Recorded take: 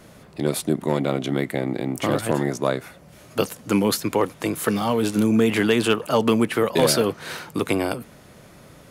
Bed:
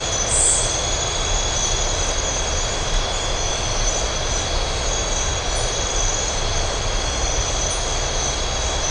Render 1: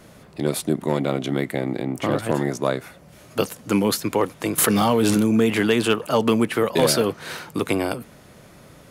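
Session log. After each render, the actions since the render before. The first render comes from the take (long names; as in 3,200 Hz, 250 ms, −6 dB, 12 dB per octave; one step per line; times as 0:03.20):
0:01.82–0:02.30: high-shelf EQ 4,300 Hz −7 dB
0:04.58–0:05.18: envelope flattener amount 100%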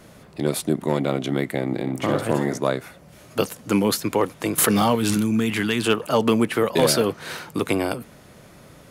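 0:01.65–0:02.59: flutter between parallel walls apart 10.5 metres, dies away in 0.35 s
0:04.95–0:05.85: parametric band 550 Hz −10.5 dB 1.4 octaves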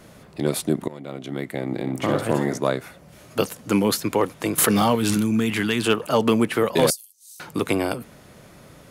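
0:00.88–0:01.96: fade in, from −21 dB
0:06.90–0:07.40: inverse Chebyshev high-pass filter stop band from 1,200 Hz, stop band 80 dB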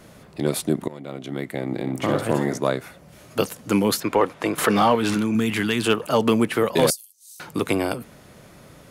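0:04.00–0:05.35: mid-hump overdrive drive 12 dB, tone 1,600 Hz, clips at −3.5 dBFS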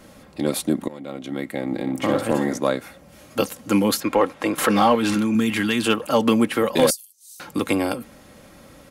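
comb filter 3.7 ms, depth 46%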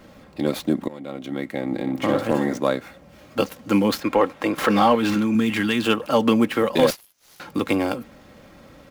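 running median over 5 samples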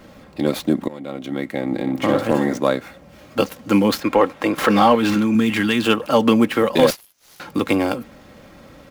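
level +3 dB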